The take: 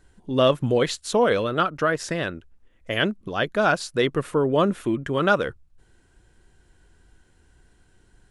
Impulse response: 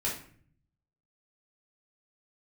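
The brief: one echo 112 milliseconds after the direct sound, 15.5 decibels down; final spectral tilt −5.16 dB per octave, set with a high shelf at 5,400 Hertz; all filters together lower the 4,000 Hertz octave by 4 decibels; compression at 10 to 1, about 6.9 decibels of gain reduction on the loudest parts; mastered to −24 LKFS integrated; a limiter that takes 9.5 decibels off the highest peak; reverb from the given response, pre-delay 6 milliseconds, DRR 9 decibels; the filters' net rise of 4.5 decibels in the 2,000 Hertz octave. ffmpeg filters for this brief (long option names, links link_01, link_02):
-filter_complex "[0:a]equalizer=frequency=2000:width_type=o:gain=9,equalizer=frequency=4000:width_type=o:gain=-7.5,highshelf=frequency=5400:gain=-7.5,acompressor=threshold=-19dB:ratio=10,alimiter=limit=-19dB:level=0:latency=1,aecho=1:1:112:0.168,asplit=2[link_01][link_02];[1:a]atrim=start_sample=2205,adelay=6[link_03];[link_02][link_03]afir=irnorm=-1:irlink=0,volume=-14.5dB[link_04];[link_01][link_04]amix=inputs=2:normalize=0,volume=4.5dB"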